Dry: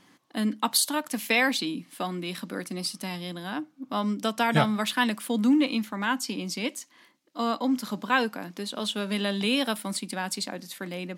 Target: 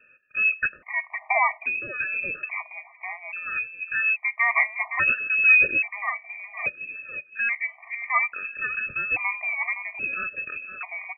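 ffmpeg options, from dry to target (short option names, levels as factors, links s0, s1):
-filter_complex "[0:a]asplit=2[s0][s1];[s1]adelay=515,lowpass=f=1400:p=1,volume=0.398,asplit=2[s2][s3];[s3]adelay=515,lowpass=f=1400:p=1,volume=0.27,asplit=2[s4][s5];[s5]adelay=515,lowpass=f=1400:p=1,volume=0.27[s6];[s0][s2][s4][s6]amix=inputs=4:normalize=0,lowpass=f=2400:t=q:w=0.5098,lowpass=f=2400:t=q:w=0.6013,lowpass=f=2400:t=q:w=0.9,lowpass=f=2400:t=q:w=2.563,afreqshift=-2800,afftfilt=real='re*gt(sin(2*PI*0.6*pts/sr)*(1-2*mod(floor(b*sr/1024/610),2)),0)':imag='im*gt(sin(2*PI*0.6*pts/sr)*(1-2*mod(floor(b*sr/1024/610),2)),0)':win_size=1024:overlap=0.75,volume=1.68"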